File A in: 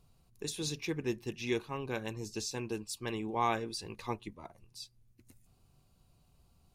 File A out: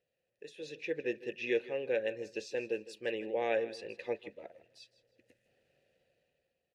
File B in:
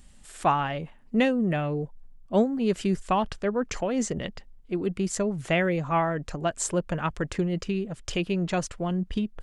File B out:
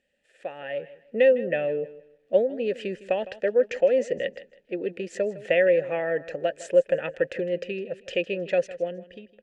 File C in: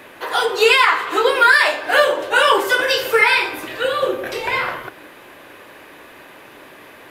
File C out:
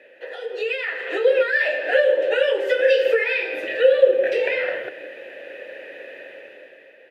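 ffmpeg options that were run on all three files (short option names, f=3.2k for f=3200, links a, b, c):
-filter_complex "[0:a]acrusher=bits=11:mix=0:aa=0.000001,acompressor=threshold=-21dB:ratio=6,asplit=3[a][b][c];[a]bandpass=f=530:t=q:w=8,volume=0dB[d];[b]bandpass=f=1.84k:t=q:w=8,volume=-6dB[e];[c]bandpass=f=2.48k:t=q:w=8,volume=-9dB[f];[d][e][f]amix=inputs=3:normalize=0,dynaudnorm=f=140:g=11:m=12dB,asplit=2[g][h];[h]aecho=0:1:158|316|474:0.141|0.0381|0.0103[i];[g][i]amix=inputs=2:normalize=0,volume=1.5dB"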